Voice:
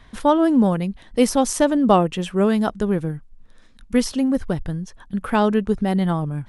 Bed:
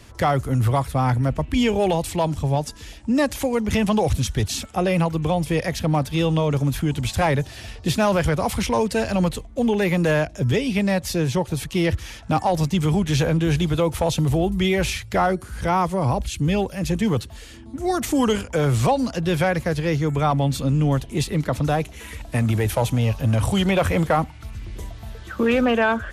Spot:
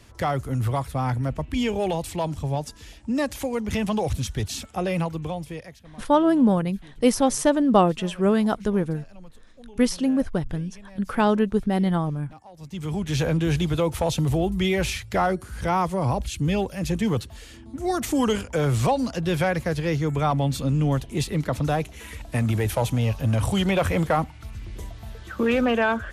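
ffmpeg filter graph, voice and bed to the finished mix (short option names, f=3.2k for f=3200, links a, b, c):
-filter_complex "[0:a]adelay=5850,volume=-2dB[a];[1:a]volume=19dB,afade=t=out:st=4.99:d=0.82:silence=0.0841395,afade=t=in:st=12.57:d=0.73:silence=0.0630957[b];[a][b]amix=inputs=2:normalize=0"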